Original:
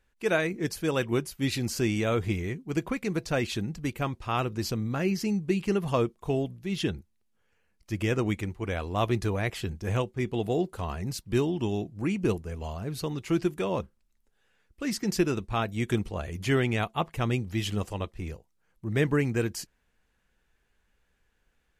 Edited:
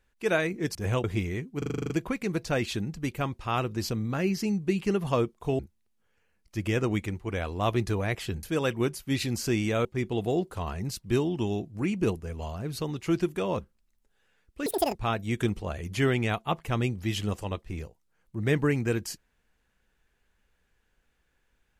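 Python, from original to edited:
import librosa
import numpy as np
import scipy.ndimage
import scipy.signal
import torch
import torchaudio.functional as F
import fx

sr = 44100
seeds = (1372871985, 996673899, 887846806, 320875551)

y = fx.edit(x, sr, fx.swap(start_s=0.75, length_s=1.42, other_s=9.78, other_length_s=0.29),
    fx.stutter(start_s=2.71, slice_s=0.04, count=9),
    fx.cut(start_s=6.4, length_s=0.54),
    fx.speed_span(start_s=14.88, length_s=0.56, speed=1.94), tone=tone)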